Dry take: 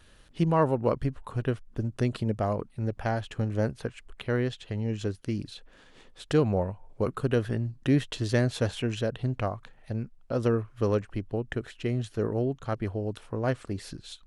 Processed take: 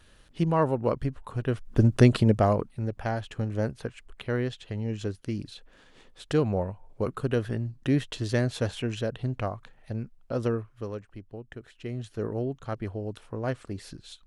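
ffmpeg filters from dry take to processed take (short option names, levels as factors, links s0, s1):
-af "volume=8.91,afade=t=in:st=1.48:d=0.36:silence=0.266073,afade=t=out:st=1.84:d=1.03:silence=0.251189,afade=t=out:st=10.39:d=0.5:silence=0.334965,afade=t=in:st=11.6:d=0.68:silence=0.398107"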